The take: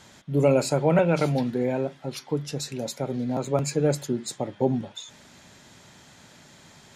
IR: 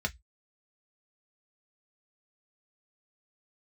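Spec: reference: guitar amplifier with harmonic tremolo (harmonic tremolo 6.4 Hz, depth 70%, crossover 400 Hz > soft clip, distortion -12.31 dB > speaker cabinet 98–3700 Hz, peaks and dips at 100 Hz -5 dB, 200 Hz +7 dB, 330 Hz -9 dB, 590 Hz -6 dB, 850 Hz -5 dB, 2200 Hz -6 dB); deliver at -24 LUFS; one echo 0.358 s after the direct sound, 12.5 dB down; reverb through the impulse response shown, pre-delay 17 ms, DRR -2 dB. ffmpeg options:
-filter_complex "[0:a]aecho=1:1:358:0.237,asplit=2[a][b];[1:a]atrim=start_sample=2205,adelay=17[c];[b][c]afir=irnorm=-1:irlink=0,volume=-3.5dB[d];[a][d]amix=inputs=2:normalize=0,acrossover=split=400[e][f];[e]aeval=exprs='val(0)*(1-0.7/2+0.7/2*cos(2*PI*6.4*n/s))':c=same[g];[f]aeval=exprs='val(0)*(1-0.7/2-0.7/2*cos(2*PI*6.4*n/s))':c=same[h];[g][h]amix=inputs=2:normalize=0,asoftclip=threshold=-18.5dB,highpass=98,equalizer=f=100:t=q:w=4:g=-5,equalizer=f=200:t=q:w=4:g=7,equalizer=f=330:t=q:w=4:g=-9,equalizer=f=590:t=q:w=4:g=-6,equalizer=f=850:t=q:w=4:g=-5,equalizer=f=2.2k:t=q:w=4:g=-6,lowpass=f=3.7k:w=0.5412,lowpass=f=3.7k:w=1.3066,volume=5dB"

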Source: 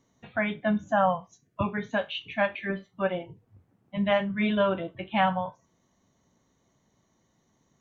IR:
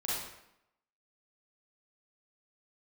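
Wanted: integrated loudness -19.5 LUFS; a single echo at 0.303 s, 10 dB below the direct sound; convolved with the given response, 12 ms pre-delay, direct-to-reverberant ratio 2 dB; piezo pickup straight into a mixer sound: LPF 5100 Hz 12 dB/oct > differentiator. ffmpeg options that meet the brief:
-filter_complex "[0:a]aecho=1:1:303:0.316,asplit=2[a][b];[1:a]atrim=start_sample=2205,adelay=12[c];[b][c]afir=irnorm=-1:irlink=0,volume=-7dB[d];[a][d]amix=inputs=2:normalize=0,lowpass=5.1k,aderivative,volume=23dB"

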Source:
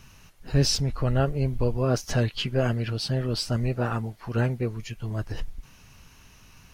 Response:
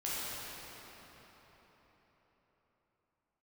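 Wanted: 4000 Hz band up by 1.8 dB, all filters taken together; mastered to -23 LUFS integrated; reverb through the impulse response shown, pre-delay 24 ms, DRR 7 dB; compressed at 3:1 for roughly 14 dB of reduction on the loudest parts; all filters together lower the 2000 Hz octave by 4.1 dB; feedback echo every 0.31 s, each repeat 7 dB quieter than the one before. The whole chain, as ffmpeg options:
-filter_complex "[0:a]equalizer=f=2k:t=o:g=-7,equalizer=f=4k:t=o:g=4,acompressor=threshold=-35dB:ratio=3,aecho=1:1:310|620|930|1240|1550:0.447|0.201|0.0905|0.0407|0.0183,asplit=2[a][b];[1:a]atrim=start_sample=2205,adelay=24[c];[b][c]afir=irnorm=-1:irlink=0,volume=-12.5dB[d];[a][d]amix=inputs=2:normalize=0,volume=11.5dB"

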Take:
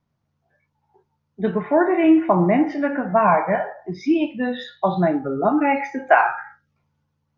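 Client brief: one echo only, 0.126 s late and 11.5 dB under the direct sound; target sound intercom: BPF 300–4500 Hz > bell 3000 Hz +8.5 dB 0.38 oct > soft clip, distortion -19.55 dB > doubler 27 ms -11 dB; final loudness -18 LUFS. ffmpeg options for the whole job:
-filter_complex "[0:a]highpass=300,lowpass=4.5k,equalizer=f=3k:t=o:w=0.38:g=8.5,aecho=1:1:126:0.266,asoftclip=threshold=-8dB,asplit=2[a][b];[b]adelay=27,volume=-11dB[c];[a][c]amix=inputs=2:normalize=0,volume=3.5dB"

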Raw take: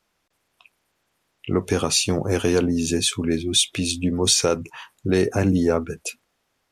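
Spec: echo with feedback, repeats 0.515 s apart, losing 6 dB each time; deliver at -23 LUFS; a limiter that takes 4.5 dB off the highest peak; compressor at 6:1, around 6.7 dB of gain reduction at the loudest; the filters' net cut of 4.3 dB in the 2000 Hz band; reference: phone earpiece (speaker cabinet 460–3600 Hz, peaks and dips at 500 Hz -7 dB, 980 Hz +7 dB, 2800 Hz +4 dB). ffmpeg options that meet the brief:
-af "equalizer=f=2k:t=o:g=-8.5,acompressor=threshold=-22dB:ratio=6,alimiter=limit=-17.5dB:level=0:latency=1,highpass=460,equalizer=f=500:t=q:w=4:g=-7,equalizer=f=980:t=q:w=4:g=7,equalizer=f=2.8k:t=q:w=4:g=4,lowpass=f=3.6k:w=0.5412,lowpass=f=3.6k:w=1.3066,aecho=1:1:515|1030|1545|2060|2575|3090:0.501|0.251|0.125|0.0626|0.0313|0.0157,volume=12.5dB"

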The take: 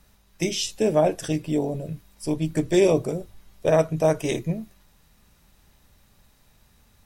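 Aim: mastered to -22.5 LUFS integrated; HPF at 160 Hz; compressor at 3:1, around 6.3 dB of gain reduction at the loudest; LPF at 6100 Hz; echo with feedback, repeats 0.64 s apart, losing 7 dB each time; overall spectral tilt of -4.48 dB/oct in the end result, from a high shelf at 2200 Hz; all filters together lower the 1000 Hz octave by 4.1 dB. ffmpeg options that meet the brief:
-af "highpass=160,lowpass=6.1k,equalizer=f=1k:t=o:g=-7.5,highshelf=f=2.2k:g=6.5,acompressor=threshold=-23dB:ratio=3,aecho=1:1:640|1280|1920|2560|3200:0.447|0.201|0.0905|0.0407|0.0183,volume=6dB"

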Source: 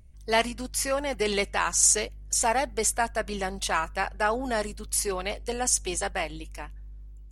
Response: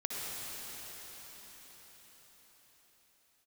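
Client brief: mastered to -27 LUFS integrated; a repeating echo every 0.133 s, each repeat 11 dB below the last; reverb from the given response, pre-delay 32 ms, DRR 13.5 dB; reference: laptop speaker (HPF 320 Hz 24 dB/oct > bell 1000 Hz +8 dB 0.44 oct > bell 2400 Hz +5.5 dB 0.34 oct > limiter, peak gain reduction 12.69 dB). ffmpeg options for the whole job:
-filter_complex "[0:a]aecho=1:1:133|266|399:0.282|0.0789|0.0221,asplit=2[a][b];[1:a]atrim=start_sample=2205,adelay=32[c];[b][c]afir=irnorm=-1:irlink=0,volume=-18dB[d];[a][d]amix=inputs=2:normalize=0,highpass=f=320:w=0.5412,highpass=f=320:w=1.3066,equalizer=f=1k:t=o:w=0.44:g=8,equalizer=f=2.4k:t=o:w=0.34:g=5.5,volume=3dB,alimiter=limit=-17dB:level=0:latency=1"

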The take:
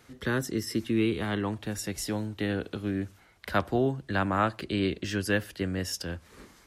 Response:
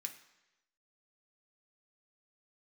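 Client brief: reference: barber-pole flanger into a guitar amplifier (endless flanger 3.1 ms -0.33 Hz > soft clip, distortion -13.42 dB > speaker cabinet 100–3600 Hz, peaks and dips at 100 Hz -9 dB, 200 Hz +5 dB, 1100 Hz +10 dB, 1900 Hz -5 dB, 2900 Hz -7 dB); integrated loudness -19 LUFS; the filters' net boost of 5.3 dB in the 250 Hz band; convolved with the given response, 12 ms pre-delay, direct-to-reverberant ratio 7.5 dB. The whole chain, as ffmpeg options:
-filter_complex "[0:a]equalizer=f=250:t=o:g=4.5,asplit=2[a][b];[1:a]atrim=start_sample=2205,adelay=12[c];[b][c]afir=irnorm=-1:irlink=0,volume=-4.5dB[d];[a][d]amix=inputs=2:normalize=0,asplit=2[e][f];[f]adelay=3.1,afreqshift=-0.33[g];[e][g]amix=inputs=2:normalize=1,asoftclip=threshold=-24.5dB,highpass=100,equalizer=f=100:t=q:w=4:g=-9,equalizer=f=200:t=q:w=4:g=5,equalizer=f=1.1k:t=q:w=4:g=10,equalizer=f=1.9k:t=q:w=4:g=-5,equalizer=f=2.9k:t=q:w=4:g=-7,lowpass=f=3.6k:w=0.5412,lowpass=f=3.6k:w=1.3066,volume=13dB"

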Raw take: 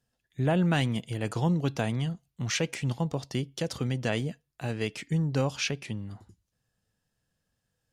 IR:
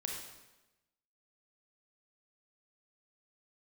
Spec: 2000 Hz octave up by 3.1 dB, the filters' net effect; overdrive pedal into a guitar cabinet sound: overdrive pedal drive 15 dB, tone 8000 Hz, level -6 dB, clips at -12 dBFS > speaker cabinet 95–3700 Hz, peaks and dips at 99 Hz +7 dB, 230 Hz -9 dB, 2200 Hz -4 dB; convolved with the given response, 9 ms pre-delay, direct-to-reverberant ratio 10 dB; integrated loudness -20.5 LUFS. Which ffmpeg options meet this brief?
-filter_complex "[0:a]equalizer=f=2k:t=o:g=6,asplit=2[a][b];[1:a]atrim=start_sample=2205,adelay=9[c];[b][c]afir=irnorm=-1:irlink=0,volume=-10.5dB[d];[a][d]amix=inputs=2:normalize=0,asplit=2[e][f];[f]highpass=f=720:p=1,volume=15dB,asoftclip=type=tanh:threshold=-12dB[g];[e][g]amix=inputs=2:normalize=0,lowpass=f=8k:p=1,volume=-6dB,highpass=95,equalizer=f=99:t=q:w=4:g=7,equalizer=f=230:t=q:w=4:g=-9,equalizer=f=2.2k:t=q:w=4:g=-4,lowpass=f=3.7k:w=0.5412,lowpass=f=3.7k:w=1.3066,volume=7dB"

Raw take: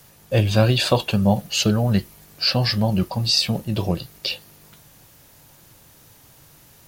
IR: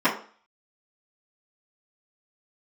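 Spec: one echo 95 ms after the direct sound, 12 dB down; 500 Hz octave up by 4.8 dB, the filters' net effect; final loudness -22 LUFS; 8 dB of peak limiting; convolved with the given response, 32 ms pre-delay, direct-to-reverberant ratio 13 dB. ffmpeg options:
-filter_complex "[0:a]equalizer=f=500:t=o:g=5.5,alimiter=limit=-8.5dB:level=0:latency=1,aecho=1:1:95:0.251,asplit=2[a][b];[1:a]atrim=start_sample=2205,adelay=32[c];[b][c]afir=irnorm=-1:irlink=0,volume=-31dB[d];[a][d]amix=inputs=2:normalize=0,volume=-1dB"

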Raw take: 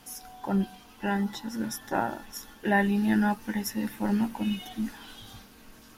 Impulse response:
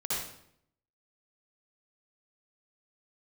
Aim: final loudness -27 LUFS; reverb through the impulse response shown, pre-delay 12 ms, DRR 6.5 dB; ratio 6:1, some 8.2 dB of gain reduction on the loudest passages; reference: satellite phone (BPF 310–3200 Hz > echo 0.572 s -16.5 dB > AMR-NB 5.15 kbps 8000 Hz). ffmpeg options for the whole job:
-filter_complex "[0:a]acompressor=threshold=-29dB:ratio=6,asplit=2[a][b];[1:a]atrim=start_sample=2205,adelay=12[c];[b][c]afir=irnorm=-1:irlink=0,volume=-12.5dB[d];[a][d]amix=inputs=2:normalize=0,highpass=310,lowpass=3.2k,aecho=1:1:572:0.15,volume=13.5dB" -ar 8000 -c:a libopencore_amrnb -b:a 5150

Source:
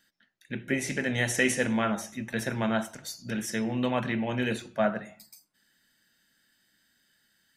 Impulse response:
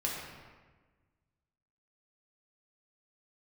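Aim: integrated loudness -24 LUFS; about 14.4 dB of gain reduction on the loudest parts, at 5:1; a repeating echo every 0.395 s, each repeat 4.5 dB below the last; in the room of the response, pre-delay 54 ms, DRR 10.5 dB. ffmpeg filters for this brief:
-filter_complex "[0:a]acompressor=threshold=-37dB:ratio=5,aecho=1:1:395|790|1185|1580|1975|2370|2765|3160|3555:0.596|0.357|0.214|0.129|0.0772|0.0463|0.0278|0.0167|0.01,asplit=2[a][b];[1:a]atrim=start_sample=2205,adelay=54[c];[b][c]afir=irnorm=-1:irlink=0,volume=-15.5dB[d];[a][d]amix=inputs=2:normalize=0,volume=14.5dB"

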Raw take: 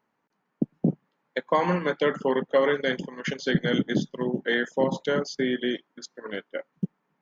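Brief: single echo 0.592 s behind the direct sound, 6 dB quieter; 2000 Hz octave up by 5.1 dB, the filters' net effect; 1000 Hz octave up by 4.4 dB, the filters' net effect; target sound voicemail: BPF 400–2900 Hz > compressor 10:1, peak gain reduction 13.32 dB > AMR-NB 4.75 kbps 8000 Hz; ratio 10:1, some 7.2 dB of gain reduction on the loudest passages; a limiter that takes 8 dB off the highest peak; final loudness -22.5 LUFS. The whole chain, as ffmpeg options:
-af "equalizer=f=1k:t=o:g=4,equalizer=f=2k:t=o:g=5.5,acompressor=threshold=-22dB:ratio=10,alimiter=limit=-17.5dB:level=0:latency=1,highpass=400,lowpass=2.9k,aecho=1:1:592:0.501,acompressor=threshold=-37dB:ratio=10,volume=22dB" -ar 8000 -c:a libopencore_amrnb -b:a 4750

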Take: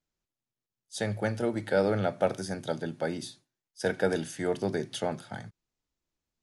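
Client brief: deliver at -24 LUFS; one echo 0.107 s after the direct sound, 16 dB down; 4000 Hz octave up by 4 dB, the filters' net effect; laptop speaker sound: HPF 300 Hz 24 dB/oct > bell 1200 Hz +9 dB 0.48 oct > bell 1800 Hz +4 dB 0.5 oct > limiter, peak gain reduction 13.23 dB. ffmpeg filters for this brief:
-af "highpass=f=300:w=0.5412,highpass=f=300:w=1.3066,equalizer=f=1.2k:t=o:w=0.48:g=9,equalizer=f=1.8k:t=o:w=0.5:g=4,equalizer=f=4k:t=o:g=4.5,aecho=1:1:107:0.158,volume=12dB,alimiter=limit=-11.5dB:level=0:latency=1"

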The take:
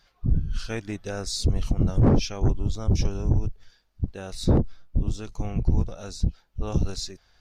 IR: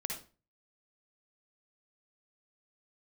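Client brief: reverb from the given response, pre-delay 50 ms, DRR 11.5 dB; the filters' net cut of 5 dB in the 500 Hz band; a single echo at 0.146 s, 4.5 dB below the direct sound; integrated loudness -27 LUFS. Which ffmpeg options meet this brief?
-filter_complex "[0:a]equalizer=f=500:t=o:g=-6.5,aecho=1:1:146:0.596,asplit=2[a][b];[1:a]atrim=start_sample=2205,adelay=50[c];[b][c]afir=irnorm=-1:irlink=0,volume=-12.5dB[d];[a][d]amix=inputs=2:normalize=0,volume=-1dB"

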